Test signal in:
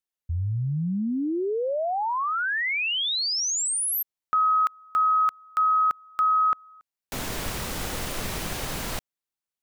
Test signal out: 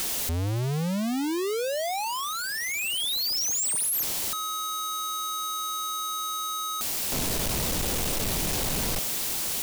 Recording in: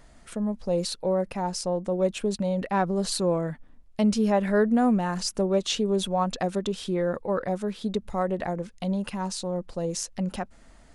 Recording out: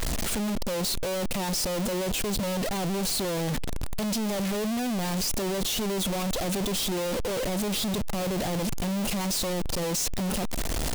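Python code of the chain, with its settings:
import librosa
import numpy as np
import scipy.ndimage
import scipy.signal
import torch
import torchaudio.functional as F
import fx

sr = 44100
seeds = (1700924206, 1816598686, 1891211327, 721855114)

y = np.sign(x) * np.sqrt(np.mean(np.square(x)))
y = fx.dynamic_eq(y, sr, hz=1500.0, q=0.87, threshold_db=-43.0, ratio=4.0, max_db=-7)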